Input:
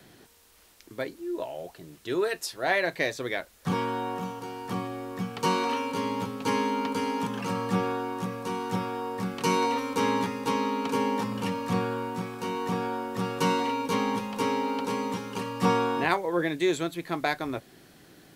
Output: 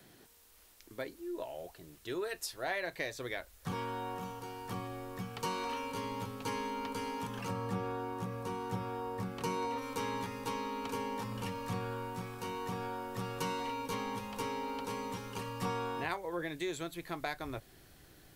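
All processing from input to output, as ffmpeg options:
-filter_complex "[0:a]asettb=1/sr,asplit=3[s0][s1][s2];[s0]atrim=end=7.484[s3];[s1]atrim=start=7.48:end=9.82,asetpts=PTS-STARTPTS,afade=t=in:d=0.004:c=qsin,afade=t=out:st=2.336:d=0.004:c=qsin,highpass=42,tiltshelf=f=1400:g=3.5[s4];[s2]atrim=start=9.816[s5];[s3][s4]acrossfade=d=0.004:c1=hsin:c2=qsin[s6];[s6][s5]acrossfade=d=0.004:c1=qsin:c2=hsin,highshelf=f=11000:g=7.5,acompressor=threshold=0.0355:ratio=2,asubboost=boost=7:cutoff=74,volume=0.501"

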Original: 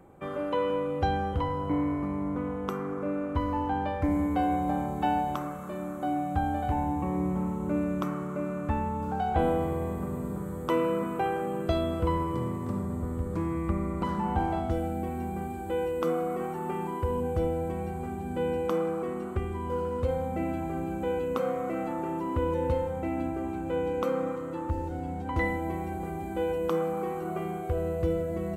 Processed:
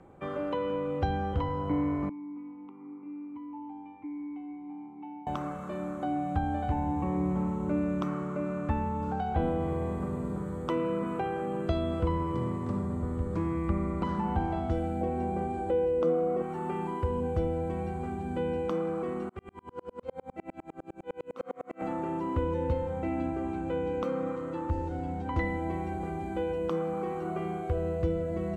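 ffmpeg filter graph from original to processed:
-filter_complex "[0:a]asettb=1/sr,asplit=3[s0][s1][s2];[s0]atrim=end=2.094[s3];[s1]atrim=start=2.09:end=5.27,asetpts=PTS-STARTPTS,afade=t=in:d=0.004:c=qsin,afade=t=out:st=3.176:d=0.004:c=qsin,bass=f=250:g=3,treble=f=4000:g=-13,acrossover=split=190|1200[s4][s5][s6];[s4]acompressor=threshold=0.00501:ratio=4[s7];[s5]acompressor=threshold=0.0126:ratio=4[s8];[s6]acompressor=threshold=0.00562:ratio=4[s9];[s7][s8][s9]amix=inputs=3:normalize=0,asplit=3[s10][s11][s12];[s10]bandpass=f=300:t=q:w=8,volume=1[s13];[s11]bandpass=f=870:t=q:w=8,volume=0.501[s14];[s12]bandpass=f=2240:t=q:w=8,volume=0.355[s15];[s13][s14][s15]amix=inputs=3:normalize=0[s16];[s2]atrim=start=5.266[s17];[s3][s16]acrossfade=d=0.004:c1=hsin:c2=qsin[s18];[s18][s17]acrossfade=d=0.004:c1=qsin:c2=hsin,asettb=1/sr,asplit=3[s19][s20][s21];[s19]atrim=end=15.014[s22];[s20]atrim=start=15.01:end=16.42,asetpts=PTS-STARTPTS,afade=t=in:d=0.004:c=qsin,afade=t=out:st=1.406:d=0.004:c=qsin,lowpass=f=11000:w=0.5412,lowpass=f=11000:w=1.3066,equalizer=f=560:t=o:w=0.92:g=11.5[s23];[s21]atrim=start=16.416[s24];[s22][s23]acrossfade=d=0.004:c1=hsin:c2=qsin[s25];[s25][s24]acrossfade=d=0.004:c1=qsin:c2=hsin,asettb=1/sr,asplit=3[s26][s27][s28];[s26]atrim=end=19.294[s29];[s27]atrim=start=19.29:end=21.82,asetpts=PTS-STARTPTS,afade=t=in:d=0.004:c=qsin,afade=t=out:st=2.526:d=0.004:c=qsin,highpass=f=270:p=1,aeval=exprs='val(0)*pow(10,-40*if(lt(mod(-9.9*n/s,1),2*abs(-9.9)/1000),1-mod(-9.9*n/s,1)/(2*abs(-9.9)/1000),(mod(-9.9*n/s,1)-2*abs(-9.9)/1000)/(1-2*abs(-9.9)/1000))/20)':c=same[s30];[s28]atrim=start=21.816[s31];[s29][s30]acrossfade=d=0.004:c1=hsin:c2=qsin[s32];[s32][s31]acrossfade=d=0.004:c1=qsin:c2=hsin,lowpass=6500,acrossover=split=330[s33][s34];[s34]acompressor=threshold=0.0251:ratio=3[s35];[s33][s35]amix=inputs=2:normalize=0"

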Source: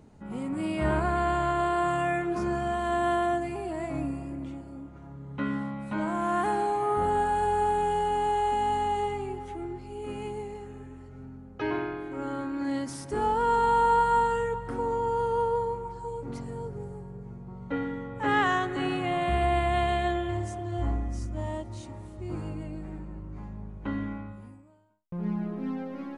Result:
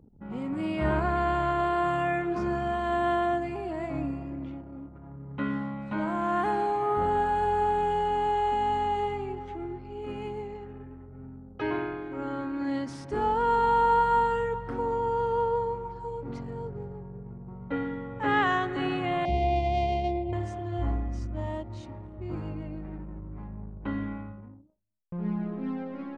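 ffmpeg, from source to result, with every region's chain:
-filter_complex "[0:a]asettb=1/sr,asplit=3[s0][s1][s2];[s0]atrim=end=19.254[s3];[s1]atrim=start=19.25:end=20.33,asetpts=PTS-STARTPTS,afade=t=in:d=0.004:c=qsin,afade=t=out:st=1.076:d=0.004:c=qsin,adynamicsmooth=sensitivity=1.5:basefreq=550,asuperstop=centerf=1400:order=12:qfactor=1.3[s4];[s2]atrim=start=20.326[s5];[s3][s4]acrossfade=d=0.004:c1=hsin:c2=qsin[s6];[s6][s5]acrossfade=d=0.004:c1=qsin:c2=hsin,anlmdn=0.00398,lowpass=4700"

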